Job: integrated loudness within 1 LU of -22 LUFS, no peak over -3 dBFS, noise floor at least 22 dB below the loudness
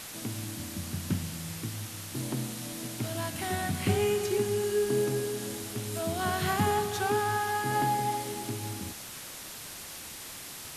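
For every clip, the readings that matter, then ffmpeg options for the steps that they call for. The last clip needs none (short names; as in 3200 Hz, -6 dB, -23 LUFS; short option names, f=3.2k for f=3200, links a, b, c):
noise floor -43 dBFS; noise floor target -54 dBFS; loudness -31.5 LUFS; peak -15.0 dBFS; loudness target -22.0 LUFS
-> -af "afftdn=nr=11:nf=-43"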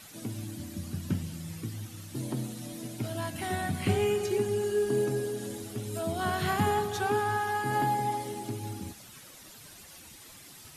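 noise floor -50 dBFS; noise floor target -54 dBFS
-> -af "afftdn=nr=6:nf=-50"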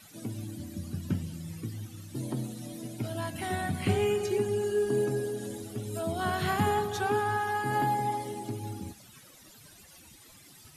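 noise floor -54 dBFS; loudness -31.5 LUFS; peak -15.0 dBFS; loudness target -22.0 LUFS
-> -af "volume=9.5dB"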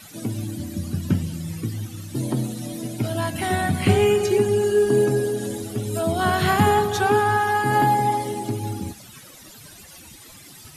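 loudness -22.0 LUFS; peak -5.5 dBFS; noise floor -45 dBFS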